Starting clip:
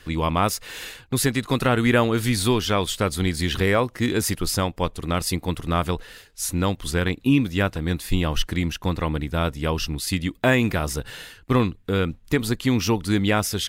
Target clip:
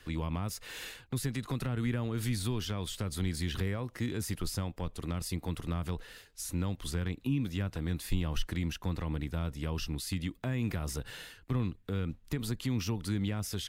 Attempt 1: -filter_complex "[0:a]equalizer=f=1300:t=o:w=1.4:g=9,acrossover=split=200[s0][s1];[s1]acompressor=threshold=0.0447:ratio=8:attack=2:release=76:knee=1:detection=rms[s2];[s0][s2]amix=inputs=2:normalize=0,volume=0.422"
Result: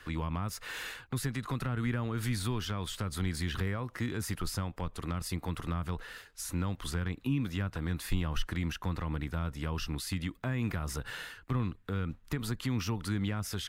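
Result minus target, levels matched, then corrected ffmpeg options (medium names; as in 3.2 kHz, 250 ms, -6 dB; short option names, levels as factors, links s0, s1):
1 kHz band +4.0 dB
-filter_complex "[0:a]acrossover=split=200[s0][s1];[s1]acompressor=threshold=0.0447:ratio=8:attack=2:release=76:knee=1:detection=rms[s2];[s0][s2]amix=inputs=2:normalize=0,volume=0.422"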